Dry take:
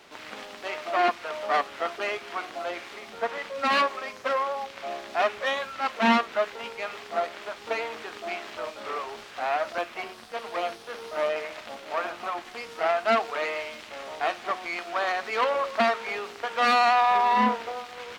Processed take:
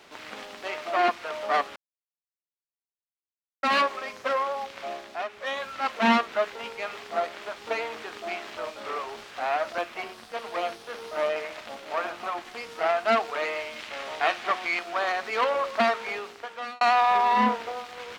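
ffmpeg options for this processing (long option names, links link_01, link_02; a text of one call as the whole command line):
ffmpeg -i in.wav -filter_complex "[0:a]asettb=1/sr,asplit=3[link_01][link_02][link_03];[link_01]atrim=end=13.764[link_04];[link_02]atrim=start=13.76:end=14.79,asetpts=PTS-STARTPTS,afade=type=in:duration=0.004:curve=qsin,afade=type=out:start_time=1.026:duration=0.004:curve=qsin,equalizer=frequency=2400:width_type=o:width=2.5:gain=5.5[link_05];[link_03]atrim=start=14.786[link_06];[link_04][link_05]acrossfade=duration=0.004:curve1=hsin:curve2=qsin[link_07];[link_07][link_06]acrossfade=duration=0.004:curve1=qsin:curve2=hsin,asplit=6[link_08][link_09][link_10][link_11][link_12][link_13];[link_08]atrim=end=1.76,asetpts=PTS-STARTPTS,afade=type=out:start_time=1.756:duration=0.004:curve=hsin[link_14];[link_09]atrim=start=1.76:end=3.63,asetpts=PTS-STARTPTS,volume=0[link_15];[link_10]atrim=start=3.63:end=5.28,asetpts=PTS-STARTPTS,afade=type=in:duration=0.004:curve=hsin,afade=type=out:start_time=1.22:duration=0.43:silence=0.281838[link_16];[link_11]atrim=start=5.28:end=5.29,asetpts=PTS-STARTPTS,volume=-11dB[link_17];[link_12]atrim=start=5.29:end=16.81,asetpts=PTS-STARTPTS,afade=type=in:duration=0.43:silence=0.281838,afade=type=out:start_time=10.78:duration=0.74[link_18];[link_13]atrim=start=16.81,asetpts=PTS-STARTPTS,afade=type=in:duration=0.004:curve=hsin[link_19];[link_14][link_15][link_16][link_17][link_18][link_19]concat=n=6:v=0:a=1" out.wav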